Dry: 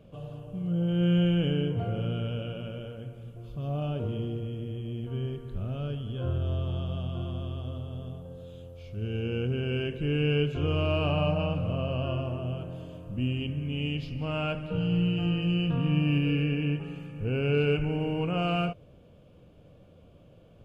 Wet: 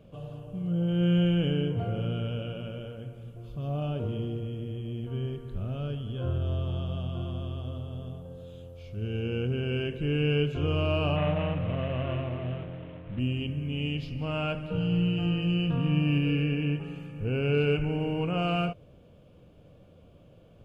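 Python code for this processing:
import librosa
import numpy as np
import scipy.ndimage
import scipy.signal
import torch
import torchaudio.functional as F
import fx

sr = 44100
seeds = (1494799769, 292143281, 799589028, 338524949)

y = fx.cvsd(x, sr, bps=16000, at=(11.16, 13.19))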